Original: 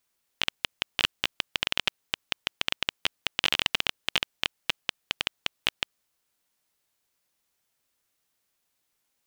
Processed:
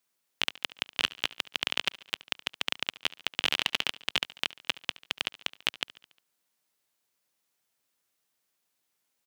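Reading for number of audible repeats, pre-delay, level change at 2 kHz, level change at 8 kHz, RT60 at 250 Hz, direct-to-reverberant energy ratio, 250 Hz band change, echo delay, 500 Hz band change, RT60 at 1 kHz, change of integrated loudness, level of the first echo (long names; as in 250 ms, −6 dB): 4, no reverb audible, −2.0 dB, −2.0 dB, no reverb audible, no reverb audible, −2.0 dB, 71 ms, −2.0 dB, no reverb audible, −2.0 dB, −20.0 dB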